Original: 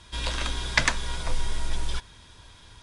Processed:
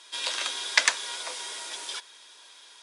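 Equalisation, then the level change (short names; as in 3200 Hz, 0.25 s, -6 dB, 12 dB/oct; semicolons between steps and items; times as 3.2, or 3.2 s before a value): HPF 380 Hz 24 dB/oct; high shelf 2100 Hz +9.5 dB; -4.0 dB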